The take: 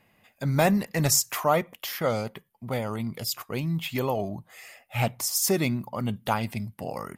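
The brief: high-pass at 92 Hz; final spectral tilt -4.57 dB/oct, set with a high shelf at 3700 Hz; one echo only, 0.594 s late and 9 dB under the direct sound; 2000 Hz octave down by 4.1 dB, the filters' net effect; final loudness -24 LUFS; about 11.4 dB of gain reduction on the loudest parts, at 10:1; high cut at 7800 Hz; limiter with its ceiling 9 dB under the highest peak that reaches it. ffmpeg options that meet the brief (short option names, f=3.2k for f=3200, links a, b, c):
-af "highpass=92,lowpass=7.8k,equalizer=f=2k:t=o:g=-6,highshelf=f=3.7k:g=3,acompressor=threshold=-30dB:ratio=10,alimiter=level_in=4dB:limit=-24dB:level=0:latency=1,volume=-4dB,aecho=1:1:594:0.355,volume=14dB"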